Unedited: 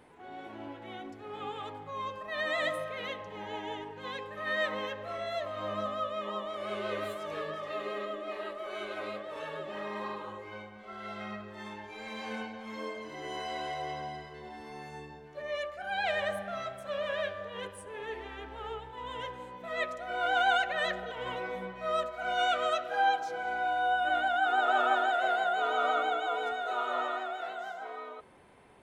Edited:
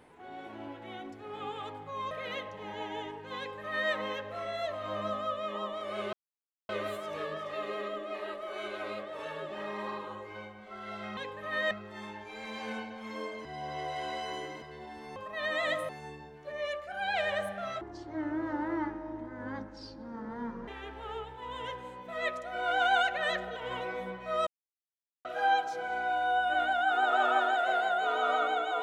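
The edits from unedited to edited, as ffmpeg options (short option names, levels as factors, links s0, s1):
-filter_complex "[0:a]asplit=13[s0][s1][s2][s3][s4][s5][s6][s7][s8][s9][s10][s11][s12];[s0]atrim=end=2.112[s13];[s1]atrim=start=2.838:end=6.86,asetpts=PTS-STARTPTS,afade=t=out:st=4.018:d=0.004:c=hsin,apad=pad_dur=0.56[s14];[s2]atrim=start=6.86:end=11.342,asetpts=PTS-STARTPTS,afade=t=in:d=0.004:c=hsin[s15];[s3]atrim=start=4.108:end=4.652[s16];[s4]atrim=start=11.338:end=13.082[s17];[s5]atrim=start=13.078:end=14.252,asetpts=PTS-STARTPTS,areverse[s18];[s6]atrim=start=14.248:end=14.792[s19];[s7]atrim=start=2.108:end=2.842[s20];[s8]atrim=start=14.788:end=16.714[s21];[s9]atrim=start=16.71:end=18.23,asetpts=PTS-STARTPTS,asetrate=23373,aresample=44100,atrim=end_sample=126475,asetpts=PTS-STARTPTS[s22];[s10]atrim=start=18.226:end=22.02,asetpts=PTS-STARTPTS,afade=t=out:st=3.79:d=0.004:c=hsin[s23];[s11]atrim=start=22.02:end=22.8,asetpts=PTS-STARTPTS,volume=0[s24];[s12]atrim=start=22.8,asetpts=PTS-STARTPTS,afade=t=in:d=0.004:c=hsin[s25];[s14][s15]concat=n=2:v=0:a=1[s26];[s13][s26]acrossfade=d=0.004:c1=hsin:c2=hsin[s27];[s27][s16]acrossfade=d=0.004:c1=hsin:c2=hsin[s28];[s28][s17]acrossfade=d=0.004:c1=hsin:c2=hsin[s29];[s29][s18]acrossfade=d=0.004:c1=hsin:c2=hsin[s30];[s30][s19]acrossfade=d=0.004:c1=hsin:c2=hsin[s31];[s31][s20]acrossfade=d=0.004:c1=hsin:c2=hsin[s32];[s32][s21]acrossfade=d=0.004:c1=hsin:c2=hsin[s33];[s33][s22]acrossfade=d=0.004:c1=hsin:c2=hsin[s34];[s23][s24][s25]concat=n=3:v=0:a=1[s35];[s34][s35]acrossfade=d=0.004:c1=hsin:c2=hsin"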